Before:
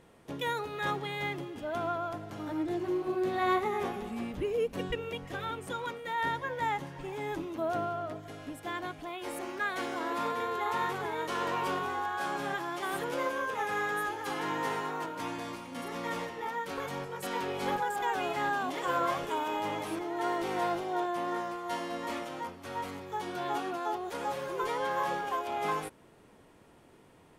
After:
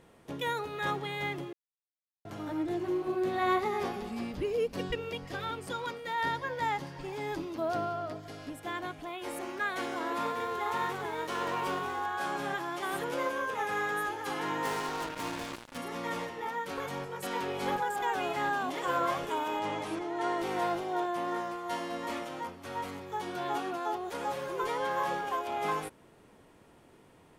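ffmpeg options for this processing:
-filter_complex "[0:a]asettb=1/sr,asplit=3[a][b][c];[a]atrim=end=3.594[d];[b]atrim=start=3.59:end=8.5,asetpts=PTS-STARTPTS,afade=t=in:d=0.004:c=qsin,afade=t=out:st=4.906:d=0.004:c=qsin,equalizer=f=4.8k:t=o:w=0.39:g=9.5[e];[c]atrim=start=8.496[f];[d][e]acrossfade=d=0.004:c1=hsin:c2=qsin[g];[g][f]acrossfade=d=0.004:c1=qsin:c2=hsin,asettb=1/sr,asplit=3[h][i][j];[h]atrim=end=10.274[k];[i]atrim=start=10.27:end=12.01,asetpts=PTS-STARTPTS,afade=t=in:d=0.004:c=qsin,afade=t=out:st=1.736:d=0.004:c=qsin,aeval=exprs='sgn(val(0))*max(abs(val(0))-0.00282,0)':c=same[l];[j]atrim=start=12.006[m];[k][l]acrossfade=d=0.004:c1=hsin:c2=qsin[n];[n][m]acrossfade=d=0.004:c1=qsin:c2=hsin,asettb=1/sr,asplit=3[o][p][q];[o]atrim=end=14.654[r];[p]atrim=start=14.65:end=15.78,asetpts=PTS-STARTPTS,afade=t=in:d=0.004:c=qsin,afade=t=out:st=1.126:d=0.004:c=qsin,acrusher=bits=5:mix=0:aa=0.5[s];[q]atrim=start=15.776[t];[r][s]acrossfade=d=0.004:c1=hsin:c2=qsin[u];[u][t]acrossfade=d=0.004:c1=qsin:c2=hsin,asettb=1/sr,asplit=3[v][w][x];[v]atrim=end=19.594[y];[w]atrim=start=19.59:end=20.38,asetpts=PTS-STARTPTS,afade=t=in:d=0.004:c=qsin,afade=t=out:st=0.786:d=0.004:c=qsin,lowpass=9.1k[z];[x]atrim=start=20.376[aa];[y][z]acrossfade=d=0.004:c1=hsin:c2=qsin[ab];[ab][aa]acrossfade=d=0.004:c1=qsin:c2=hsin,asplit=3[ac][ad][ae];[ac]atrim=end=1.53,asetpts=PTS-STARTPTS,afade=t=out:st=1.526:d=0.004:c=hsin[af];[ad]atrim=start=1.53:end=2.25,asetpts=PTS-STARTPTS,volume=0[ag];[ae]atrim=start=2.25,asetpts=PTS-STARTPTS,afade=t=in:d=0.004:c=hsin[ah];[af][ag][ah]concat=n=3:v=0:a=1"

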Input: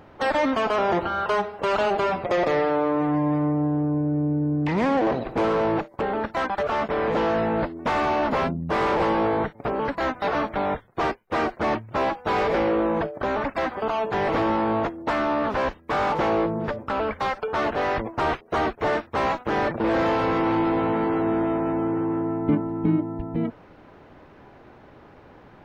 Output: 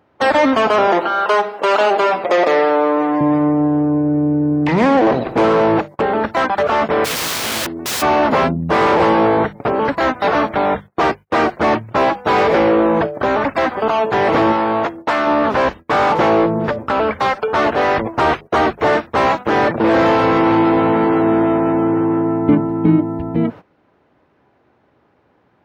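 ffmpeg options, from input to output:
-filter_complex "[0:a]asettb=1/sr,asplit=3[a][b][c];[a]atrim=end=0.874[d];[b]atrim=start=0.87:end=3.21,asetpts=PTS-STARTPTS,afade=t=in:d=0.004:c=qsin,afade=t=out:st=2.336:d=0.004:c=qsin,highpass=320[e];[c]atrim=start=3.206[f];[d][e]acrossfade=d=0.004:c1=hsin:c2=qsin[g];[g][f]acrossfade=d=0.004:c1=qsin:c2=hsin,asplit=3[h][i][j];[h]afade=t=out:st=7.04:d=0.02[k];[i]aeval=exprs='(mod(17.8*val(0)+1,2)-1)/17.8':c=same,afade=t=in:st=7.04:d=0.02,afade=t=out:st=8.01:d=0.02[l];[j]afade=t=in:st=8.01:d=0.02[m];[k][l][m]amix=inputs=3:normalize=0,asettb=1/sr,asplit=3[n][o][p];[n]atrim=end=14.524[q];[o]atrim=start=14.52:end=15.27,asetpts=PTS-STARTPTS,afade=t=in:d=0.004:c=qsin,afade=t=out:st=0.746:d=0.004:c=qsin,lowshelf=f=380:g=-8[r];[p]atrim=start=15.266[s];[q][r]acrossfade=d=0.004:c1=hsin:c2=qsin[t];[t][s]acrossfade=d=0.004:c1=qsin:c2=hsin,bandreject=f=50:t=h:w=6,bandreject=f=100:t=h:w=6,bandreject=f=150:t=h:w=6,bandreject=f=200:t=h:w=6,agate=range=-18dB:threshold=-39dB:ratio=16:detection=peak,highpass=74,volume=9dB"

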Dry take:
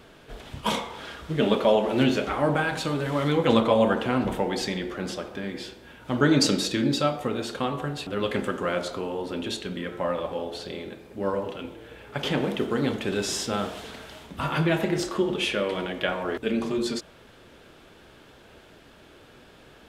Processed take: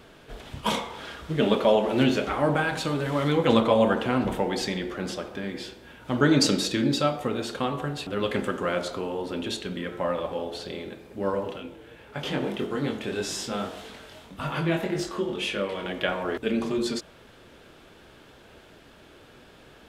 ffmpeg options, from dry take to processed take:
-filter_complex "[0:a]asplit=3[a][b][c];[a]afade=t=out:st=11.58:d=0.02[d];[b]flanger=delay=20:depth=3.9:speed=1.8,afade=t=in:st=11.58:d=0.02,afade=t=out:st=15.84:d=0.02[e];[c]afade=t=in:st=15.84:d=0.02[f];[d][e][f]amix=inputs=3:normalize=0"

